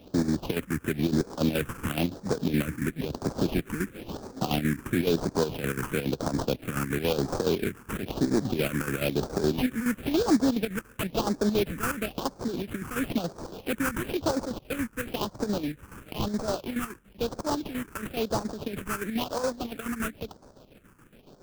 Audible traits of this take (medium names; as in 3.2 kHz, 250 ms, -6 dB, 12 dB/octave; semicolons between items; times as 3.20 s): aliases and images of a low sample rate 2 kHz, jitter 20%; chopped level 7.1 Hz, depth 60%, duty 60%; phasing stages 4, 0.99 Hz, lowest notch 630–2800 Hz